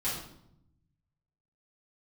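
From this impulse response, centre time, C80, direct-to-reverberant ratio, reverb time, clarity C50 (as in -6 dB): 47 ms, 6.5 dB, -10.5 dB, 0.75 s, 2.5 dB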